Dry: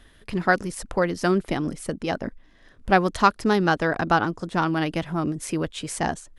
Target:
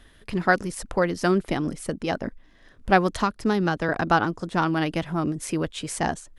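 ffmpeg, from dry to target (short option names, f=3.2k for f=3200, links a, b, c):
-filter_complex "[0:a]asettb=1/sr,asplit=3[a][b][c];[a]atrim=end=3.124[d];[b]atrim=start=3.12:end=3.89,asetpts=PTS-STARTPTS,afade=t=in:d=0.004:c=qsin,afade=t=out:st=0.766:d=0.004:c=qsin,acrossover=split=250[e][f];[f]acompressor=threshold=-23dB:ratio=3[g];[e][g]amix=inputs=2:normalize=0[h];[c]atrim=start=3.886[i];[d][h]acrossfade=d=0.004:c1=hsin:c2=qsin[j];[j][i]acrossfade=d=0.004:c1=qsin:c2=hsin"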